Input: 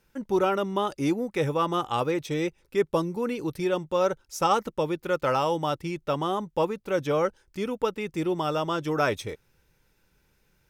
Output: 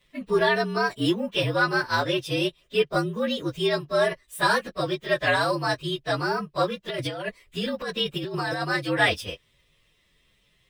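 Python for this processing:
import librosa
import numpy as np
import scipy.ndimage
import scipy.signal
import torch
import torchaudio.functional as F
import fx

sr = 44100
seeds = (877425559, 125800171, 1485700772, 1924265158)

y = fx.partial_stretch(x, sr, pct=115)
y = fx.over_compress(y, sr, threshold_db=-33.0, ratio=-1.0, at=(6.88, 8.62))
y = fx.peak_eq(y, sr, hz=3000.0, db=12.0, octaves=1.4)
y = y * librosa.db_to_amplitude(2.5)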